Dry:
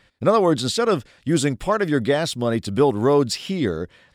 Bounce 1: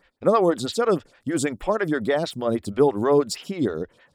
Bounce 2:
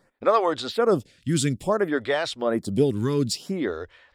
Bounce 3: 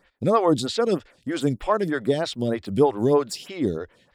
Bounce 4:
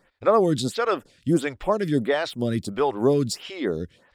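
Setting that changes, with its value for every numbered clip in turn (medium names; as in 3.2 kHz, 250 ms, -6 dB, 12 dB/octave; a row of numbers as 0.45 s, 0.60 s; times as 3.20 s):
lamp-driven phase shifter, rate: 6.3 Hz, 0.58 Hz, 3.2 Hz, 1.5 Hz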